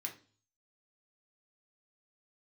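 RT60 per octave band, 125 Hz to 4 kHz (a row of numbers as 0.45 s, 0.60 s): 0.75 s, 0.50 s, 0.45 s, 0.35 s, 0.35 s, 0.45 s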